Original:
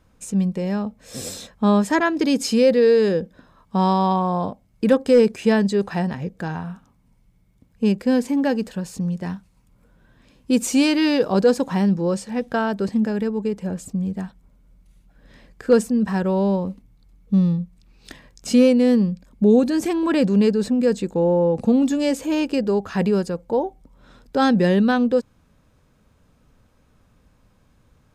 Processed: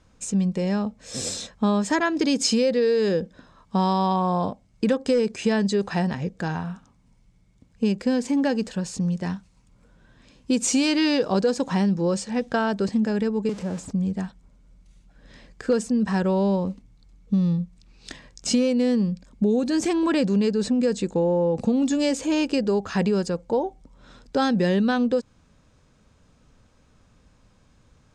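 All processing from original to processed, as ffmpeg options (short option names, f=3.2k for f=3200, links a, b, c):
-filter_complex "[0:a]asettb=1/sr,asplit=3[a][b][c];[a]atrim=end=13.494[d];[b]atrim=start=13.49:end=13.91,asetpts=PTS-STARTPTS,afade=t=in:d=0.004:c=qsin,afade=t=out:st=0.416:d=0.004:c=qsin,aeval=exprs='val(0)+0.5*0.0251*sgn(val(0))':c=same,highpass=51,acrossover=split=260|1300[e][f][g];[e]acompressor=threshold=-30dB:ratio=4[h];[f]acompressor=threshold=-30dB:ratio=4[i];[g]acompressor=threshold=-47dB:ratio=4[j];[h][i][j]amix=inputs=3:normalize=0[k];[c]atrim=start=13.906[l];[d][k]acrossfade=d=0.004:c1=hsin:c2=qsin[m];[m][l]acrossfade=d=0.004:c1=qsin:c2=hsin,lowpass=f=7.7k:w=0.5412,lowpass=f=7.7k:w=1.3066,acompressor=threshold=-18dB:ratio=5,highshelf=f=5.1k:g=9"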